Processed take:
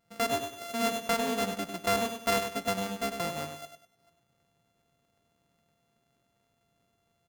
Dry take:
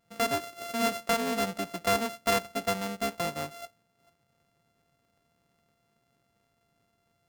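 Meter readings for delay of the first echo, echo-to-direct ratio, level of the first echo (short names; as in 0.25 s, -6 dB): 99 ms, -7.0 dB, -7.5 dB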